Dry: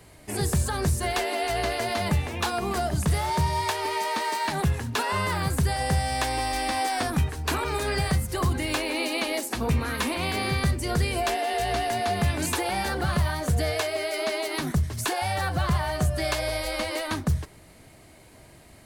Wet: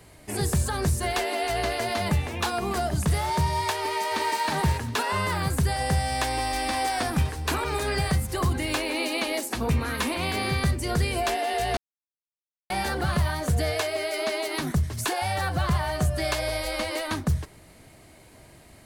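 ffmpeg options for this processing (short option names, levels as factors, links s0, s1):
-filter_complex "[0:a]asplit=2[s0][s1];[s1]afade=t=in:st=3.75:d=0.01,afade=t=out:st=4.41:d=0.01,aecho=0:1:360|720|1080:0.630957|0.126191|0.0252383[s2];[s0][s2]amix=inputs=2:normalize=0,asplit=2[s3][s4];[s4]afade=t=in:st=6.12:d=0.01,afade=t=out:st=6.79:d=0.01,aecho=0:1:520|1040|1560|2080|2600:0.223872|0.111936|0.055968|0.027984|0.013992[s5];[s3][s5]amix=inputs=2:normalize=0,asplit=3[s6][s7][s8];[s6]atrim=end=11.77,asetpts=PTS-STARTPTS,afade=t=out:st=11.766:d=0.004:c=hsin[s9];[s7]atrim=start=11.77:end=12.7,asetpts=PTS-STARTPTS,volume=0[s10];[s8]atrim=start=12.7,asetpts=PTS-STARTPTS,afade=t=in:d=0.004:c=hsin[s11];[s9][s10][s11]concat=n=3:v=0:a=1"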